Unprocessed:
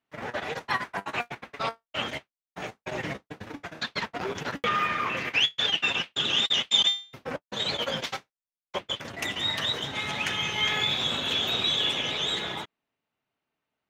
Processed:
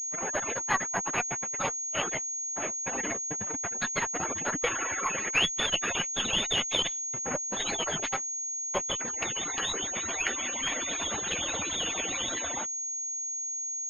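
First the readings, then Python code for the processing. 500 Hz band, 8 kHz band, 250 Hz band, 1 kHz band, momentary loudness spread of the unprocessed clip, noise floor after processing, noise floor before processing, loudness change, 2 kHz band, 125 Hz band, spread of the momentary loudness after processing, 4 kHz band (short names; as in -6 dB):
-1.0 dB, +17.0 dB, -1.5 dB, -2.0 dB, 15 LU, -35 dBFS, under -85 dBFS, -2.0 dB, -2.5 dB, -4.0 dB, 5 LU, -6.5 dB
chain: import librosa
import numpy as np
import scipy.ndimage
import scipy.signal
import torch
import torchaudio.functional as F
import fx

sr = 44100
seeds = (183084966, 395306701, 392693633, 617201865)

y = fx.hpss_only(x, sr, part='percussive')
y = fx.cheby_harmonics(y, sr, harmonics=(8,), levels_db=(-28,), full_scale_db=-12.0)
y = fx.pwm(y, sr, carrier_hz=6600.0)
y = y * 10.0 ** (2.0 / 20.0)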